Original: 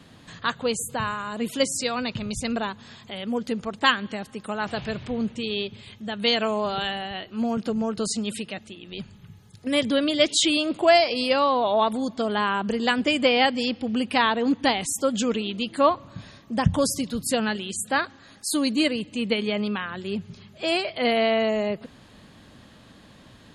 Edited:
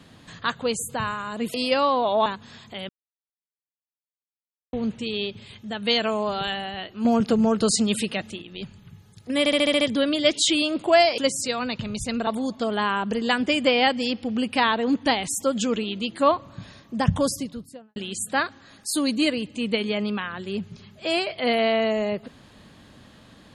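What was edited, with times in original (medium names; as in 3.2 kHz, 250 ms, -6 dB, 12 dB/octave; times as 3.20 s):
1.54–2.63 s: swap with 11.13–11.85 s
3.26–5.10 s: mute
7.42–8.79 s: gain +6 dB
9.76 s: stutter 0.07 s, 7 plays
16.73–17.54 s: studio fade out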